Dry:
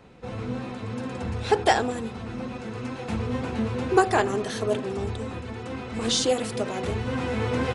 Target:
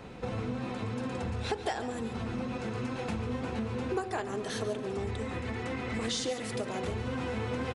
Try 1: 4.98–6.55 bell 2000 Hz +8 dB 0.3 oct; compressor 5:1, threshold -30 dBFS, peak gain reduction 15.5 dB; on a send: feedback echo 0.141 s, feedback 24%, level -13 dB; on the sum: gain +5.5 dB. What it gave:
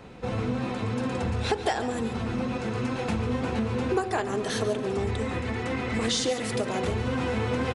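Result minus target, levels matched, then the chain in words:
compressor: peak gain reduction -6.5 dB
4.98–6.55 bell 2000 Hz +8 dB 0.3 oct; compressor 5:1, threshold -38 dBFS, peak gain reduction 22 dB; on a send: feedback echo 0.141 s, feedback 24%, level -13 dB; on the sum: gain +5.5 dB

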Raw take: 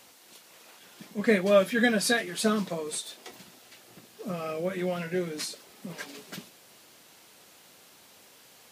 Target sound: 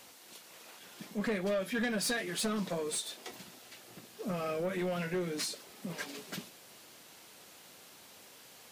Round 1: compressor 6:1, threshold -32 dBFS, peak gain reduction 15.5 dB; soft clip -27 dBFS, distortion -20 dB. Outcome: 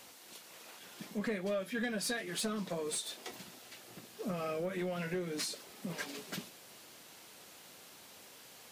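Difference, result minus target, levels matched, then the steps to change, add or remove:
compressor: peak gain reduction +5 dB
change: compressor 6:1, threshold -26 dBFS, peak gain reduction 10.5 dB

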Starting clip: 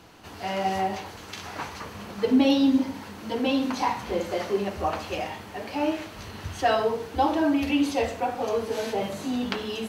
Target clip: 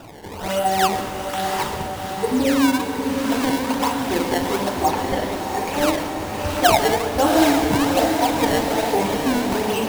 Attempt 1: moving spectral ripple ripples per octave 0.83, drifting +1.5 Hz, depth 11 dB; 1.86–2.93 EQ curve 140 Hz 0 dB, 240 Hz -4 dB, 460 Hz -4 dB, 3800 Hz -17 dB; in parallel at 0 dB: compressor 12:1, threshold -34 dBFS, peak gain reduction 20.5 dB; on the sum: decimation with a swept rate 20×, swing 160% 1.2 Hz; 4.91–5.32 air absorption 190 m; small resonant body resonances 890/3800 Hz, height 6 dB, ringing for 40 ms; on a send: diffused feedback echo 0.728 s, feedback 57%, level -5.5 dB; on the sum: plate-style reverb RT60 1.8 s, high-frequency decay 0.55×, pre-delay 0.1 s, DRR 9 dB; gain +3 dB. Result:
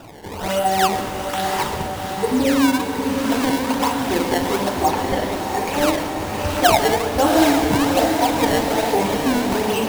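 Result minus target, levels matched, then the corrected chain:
compressor: peak gain reduction -9 dB
moving spectral ripple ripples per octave 0.83, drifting +1.5 Hz, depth 11 dB; 1.86–2.93 EQ curve 140 Hz 0 dB, 240 Hz -4 dB, 460 Hz -4 dB, 3800 Hz -17 dB; in parallel at 0 dB: compressor 12:1, threshold -44 dBFS, peak gain reduction 29.5 dB; on the sum: decimation with a swept rate 20×, swing 160% 1.2 Hz; 4.91–5.32 air absorption 190 m; small resonant body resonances 890/3800 Hz, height 6 dB, ringing for 40 ms; on a send: diffused feedback echo 0.728 s, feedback 57%, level -5.5 dB; on the sum: plate-style reverb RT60 1.8 s, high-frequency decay 0.55×, pre-delay 0.1 s, DRR 9 dB; gain +3 dB

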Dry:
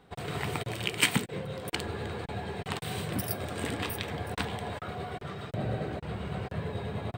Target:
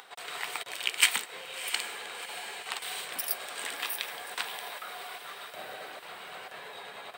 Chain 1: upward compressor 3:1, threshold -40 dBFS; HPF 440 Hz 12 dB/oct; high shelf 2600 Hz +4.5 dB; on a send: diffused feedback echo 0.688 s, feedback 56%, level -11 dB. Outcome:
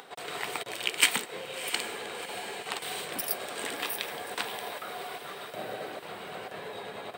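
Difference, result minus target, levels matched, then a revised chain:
500 Hz band +7.0 dB
upward compressor 3:1, threshold -40 dBFS; HPF 890 Hz 12 dB/oct; high shelf 2600 Hz +4.5 dB; on a send: diffused feedback echo 0.688 s, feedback 56%, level -11 dB

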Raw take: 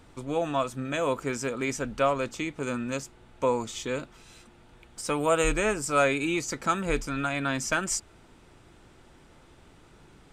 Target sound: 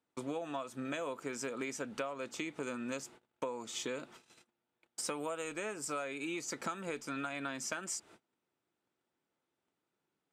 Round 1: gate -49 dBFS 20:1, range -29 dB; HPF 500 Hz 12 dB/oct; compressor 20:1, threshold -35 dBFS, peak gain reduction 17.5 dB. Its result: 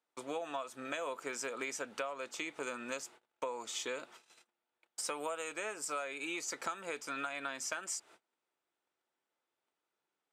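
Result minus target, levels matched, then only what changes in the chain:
250 Hz band -6.5 dB
change: HPF 210 Hz 12 dB/oct

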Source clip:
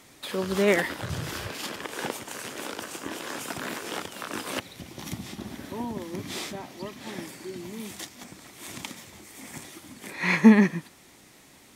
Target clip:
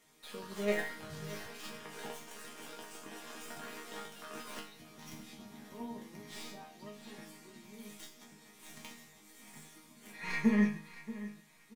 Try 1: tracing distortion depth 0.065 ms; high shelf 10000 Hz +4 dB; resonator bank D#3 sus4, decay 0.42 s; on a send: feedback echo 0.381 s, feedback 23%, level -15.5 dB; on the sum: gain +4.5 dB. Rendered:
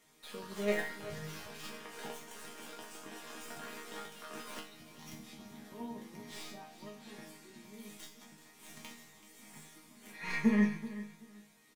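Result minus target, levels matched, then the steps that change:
echo 0.249 s early
change: feedback echo 0.63 s, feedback 23%, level -15.5 dB

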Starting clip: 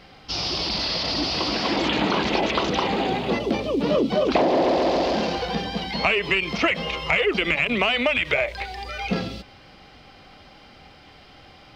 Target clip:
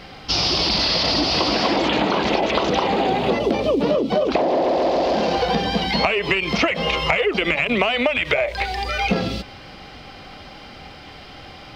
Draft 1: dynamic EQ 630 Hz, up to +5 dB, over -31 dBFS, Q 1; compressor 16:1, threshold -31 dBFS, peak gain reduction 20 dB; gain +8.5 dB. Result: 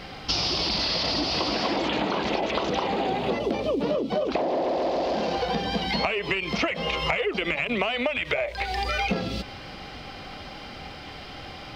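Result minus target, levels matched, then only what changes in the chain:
compressor: peak gain reduction +6.5 dB
change: compressor 16:1, threshold -24 dBFS, peak gain reduction 13.5 dB

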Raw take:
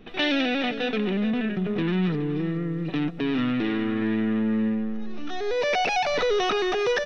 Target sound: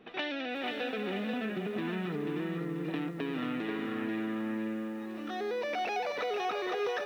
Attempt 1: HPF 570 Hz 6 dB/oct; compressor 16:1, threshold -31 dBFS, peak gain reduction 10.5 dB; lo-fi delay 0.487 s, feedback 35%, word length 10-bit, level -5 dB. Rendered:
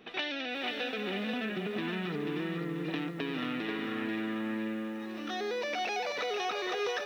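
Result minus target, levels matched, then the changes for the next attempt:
4000 Hz band +4.0 dB
add after HPF: high shelf 2700 Hz -11 dB

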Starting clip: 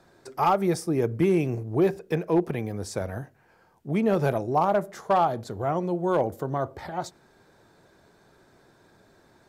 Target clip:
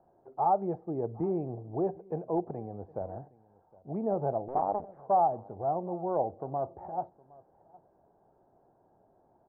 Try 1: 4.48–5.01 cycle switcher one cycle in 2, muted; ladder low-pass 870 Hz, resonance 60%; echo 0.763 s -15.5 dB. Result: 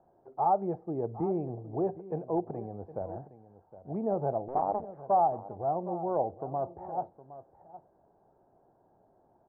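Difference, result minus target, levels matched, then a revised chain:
echo-to-direct +8 dB
4.48–5.01 cycle switcher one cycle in 2, muted; ladder low-pass 870 Hz, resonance 60%; echo 0.763 s -23.5 dB

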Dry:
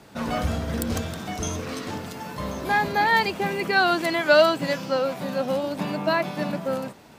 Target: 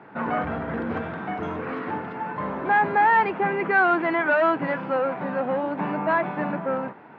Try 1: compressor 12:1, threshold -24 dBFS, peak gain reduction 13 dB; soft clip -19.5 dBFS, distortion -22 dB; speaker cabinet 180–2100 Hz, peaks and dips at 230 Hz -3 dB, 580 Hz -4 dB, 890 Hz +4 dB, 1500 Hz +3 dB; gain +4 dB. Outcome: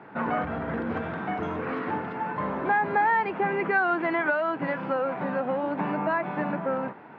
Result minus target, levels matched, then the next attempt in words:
compressor: peak gain reduction +13 dB
soft clip -19.5 dBFS, distortion -10 dB; speaker cabinet 180–2100 Hz, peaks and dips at 230 Hz -3 dB, 580 Hz -4 dB, 890 Hz +4 dB, 1500 Hz +3 dB; gain +4 dB

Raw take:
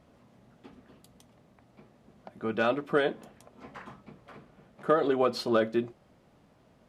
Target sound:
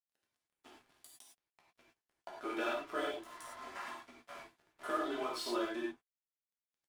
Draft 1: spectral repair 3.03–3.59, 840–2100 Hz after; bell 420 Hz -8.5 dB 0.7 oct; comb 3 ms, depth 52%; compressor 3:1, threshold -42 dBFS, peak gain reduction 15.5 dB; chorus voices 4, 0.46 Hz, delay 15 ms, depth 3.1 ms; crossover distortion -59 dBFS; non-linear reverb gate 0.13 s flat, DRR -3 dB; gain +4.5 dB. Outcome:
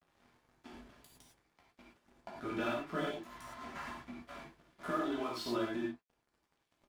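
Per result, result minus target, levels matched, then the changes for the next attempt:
8000 Hz band -4.0 dB; 250 Hz band +3.0 dB
add after compressor: bell 9100 Hz +7.5 dB 0.6 oct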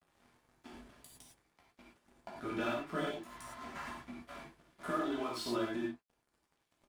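250 Hz band +3.0 dB
add after spectral repair: HPF 330 Hz 24 dB/oct

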